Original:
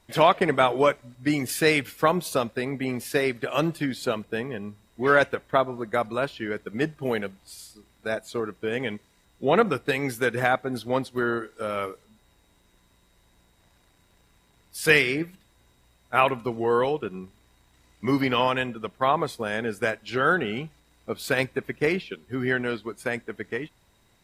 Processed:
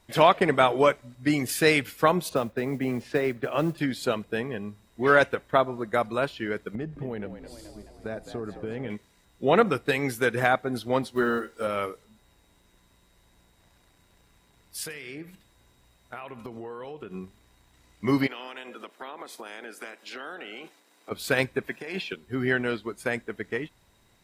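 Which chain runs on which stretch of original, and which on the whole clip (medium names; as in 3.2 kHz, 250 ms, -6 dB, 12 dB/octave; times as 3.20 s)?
2.29–3.78 s: tape spacing loss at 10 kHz 24 dB + modulation noise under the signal 29 dB + three bands compressed up and down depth 40%
6.75–8.90 s: tilt EQ -3 dB/octave + compression 5:1, threshold -30 dBFS + frequency-shifting echo 214 ms, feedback 61%, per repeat +58 Hz, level -11 dB
11.02–11.67 s: block-companded coder 7-bit + doubling 13 ms -5.5 dB
14.83–17.14 s: compression 20:1, threshold -34 dBFS + delay 73 ms -19 dB
18.26–21.10 s: spectral peaks clipped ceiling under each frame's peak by 12 dB + high-pass 250 Hz 24 dB/octave + compression 5:1, threshold -37 dBFS
21.67–22.13 s: high-pass 290 Hz + comb 1.2 ms, depth 39% + compressor with a negative ratio -33 dBFS
whole clip: none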